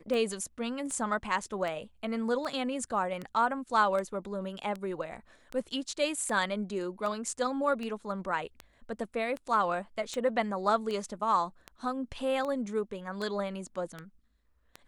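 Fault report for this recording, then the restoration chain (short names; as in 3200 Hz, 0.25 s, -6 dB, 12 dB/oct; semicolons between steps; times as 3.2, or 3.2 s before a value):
tick 78 rpm -24 dBFS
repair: de-click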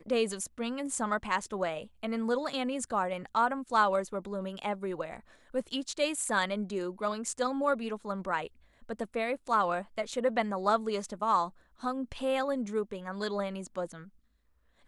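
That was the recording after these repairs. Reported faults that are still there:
none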